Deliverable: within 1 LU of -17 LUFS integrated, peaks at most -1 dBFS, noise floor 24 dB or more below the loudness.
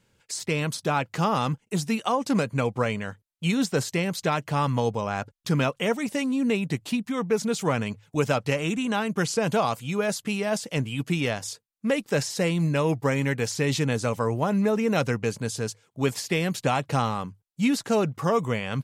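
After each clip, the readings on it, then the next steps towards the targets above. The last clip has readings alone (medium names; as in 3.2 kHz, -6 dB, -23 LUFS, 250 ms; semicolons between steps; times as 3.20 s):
loudness -26.0 LUFS; peak level -10.5 dBFS; loudness target -17.0 LUFS
-> trim +9 dB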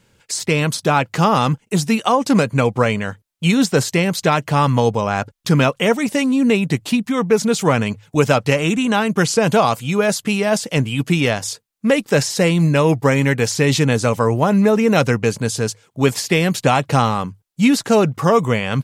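loudness -17.0 LUFS; peak level -1.5 dBFS; noise floor -61 dBFS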